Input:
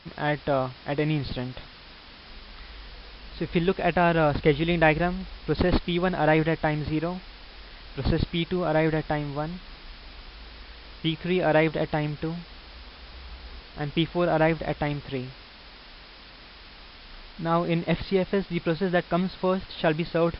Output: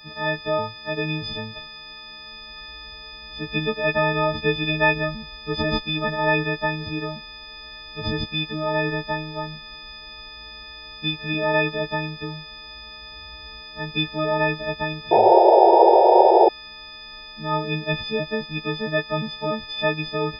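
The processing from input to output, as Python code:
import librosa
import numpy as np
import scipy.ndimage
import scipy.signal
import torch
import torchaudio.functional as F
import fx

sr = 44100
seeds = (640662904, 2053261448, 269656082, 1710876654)

y = fx.freq_snap(x, sr, grid_st=6)
y = fx.spec_paint(y, sr, seeds[0], shape='noise', start_s=15.11, length_s=1.38, low_hz=340.0, high_hz=950.0, level_db=-11.0)
y = y * librosa.db_to_amplitude(-2.0)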